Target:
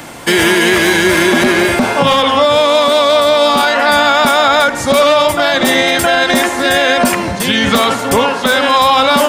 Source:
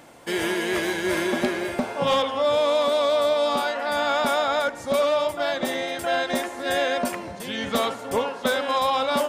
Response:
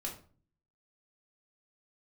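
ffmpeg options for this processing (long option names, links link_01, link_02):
-filter_complex "[0:a]equalizer=frequency=540:width=0.93:gain=-6,acrossover=split=240|850|2600[link_01][link_02][link_03][link_04];[link_04]asoftclip=type=tanh:threshold=-27dB[link_05];[link_01][link_02][link_03][link_05]amix=inputs=4:normalize=0,alimiter=level_in=21.5dB:limit=-1dB:release=50:level=0:latency=1,volume=-1dB"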